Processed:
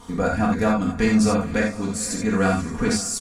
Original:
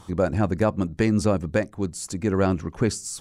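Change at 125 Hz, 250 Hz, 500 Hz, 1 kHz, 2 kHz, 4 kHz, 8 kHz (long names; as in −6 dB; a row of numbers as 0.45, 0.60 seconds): −1.5, +4.0, 0.0, +5.0, +6.5, +6.5, +6.5 decibels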